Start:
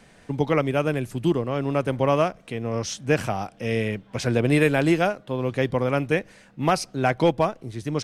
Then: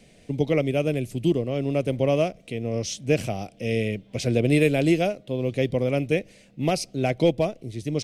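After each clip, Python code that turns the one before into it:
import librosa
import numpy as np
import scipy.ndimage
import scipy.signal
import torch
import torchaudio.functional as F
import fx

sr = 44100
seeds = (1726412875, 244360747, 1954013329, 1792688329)

y = fx.band_shelf(x, sr, hz=1200.0, db=-14.0, octaves=1.3)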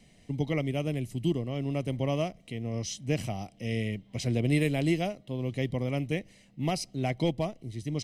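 y = x + 0.46 * np.pad(x, (int(1.0 * sr / 1000.0), 0))[:len(x)]
y = F.gain(torch.from_numpy(y), -6.0).numpy()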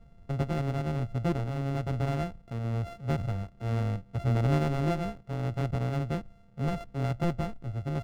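y = np.r_[np.sort(x[:len(x) // 64 * 64].reshape(-1, 64), axis=1).ravel(), x[len(x) // 64 * 64:]]
y = fx.riaa(y, sr, side='playback')
y = F.gain(torch.from_numpy(y), -6.5).numpy()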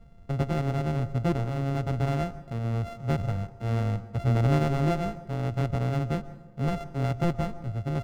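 y = fx.rev_plate(x, sr, seeds[0], rt60_s=1.1, hf_ratio=0.45, predelay_ms=110, drr_db=16.0)
y = F.gain(torch.from_numpy(y), 2.5).numpy()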